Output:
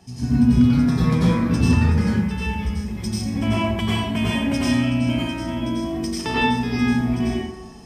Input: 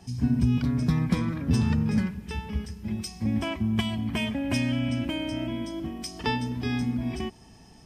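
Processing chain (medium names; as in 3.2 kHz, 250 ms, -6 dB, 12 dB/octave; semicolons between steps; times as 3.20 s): bass shelf 83 Hz -5 dB; plate-style reverb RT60 0.97 s, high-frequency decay 0.55×, pre-delay 80 ms, DRR -8 dB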